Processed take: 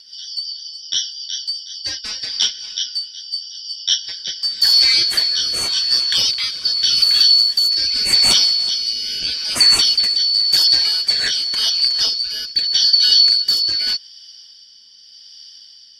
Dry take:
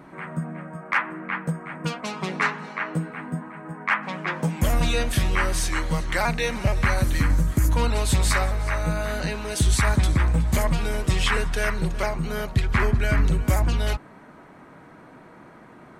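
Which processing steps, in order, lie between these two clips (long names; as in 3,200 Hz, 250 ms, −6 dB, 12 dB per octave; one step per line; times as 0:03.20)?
band-splitting scrambler in four parts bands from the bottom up 4321
dynamic equaliser 1,600 Hz, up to +3 dB, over −39 dBFS, Q 0.9
rotating-speaker cabinet horn 5.5 Hz, later 0.85 Hz, at 0:02.00
level +7 dB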